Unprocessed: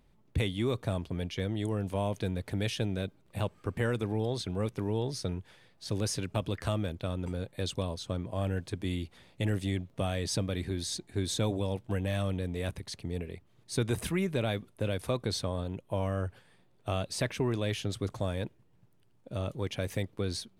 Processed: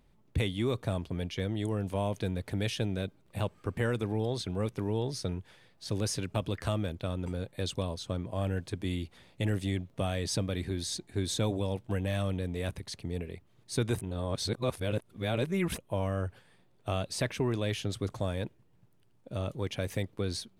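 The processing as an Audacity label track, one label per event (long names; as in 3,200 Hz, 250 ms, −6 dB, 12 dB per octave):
14.010000	15.780000	reverse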